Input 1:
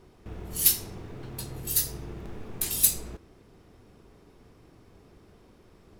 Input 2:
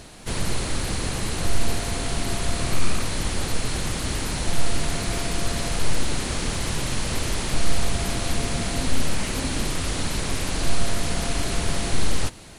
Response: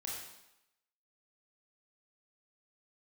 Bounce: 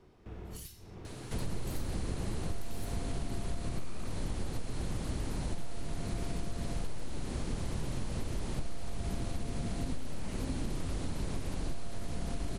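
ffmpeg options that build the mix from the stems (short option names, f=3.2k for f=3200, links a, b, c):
-filter_complex "[0:a]alimiter=limit=-14dB:level=0:latency=1:release=372,acrossover=split=130[a][b];[b]acompressor=threshold=-36dB:ratio=8[c];[a][c]amix=inputs=2:normalize=0,highshelf=f=8.6k:g=-11,volume=-5dB[d];[1:a]acrossover=split=350|990[e][f][g];[e]acompressor=threshold=-18dB:ratio=4[h];[f]acompressor=threshold=-40dB:ratio=4[i];[g]acompressor=threshold=-43dB:ratio=4[j];[h][i][j]amix=inputs=3:normalize=0,adelay=1050,volume=-5.5dB[k];[d][k]amix=inputs=2:normalize=0,acompressor=threshold=-29dB:ratio=6"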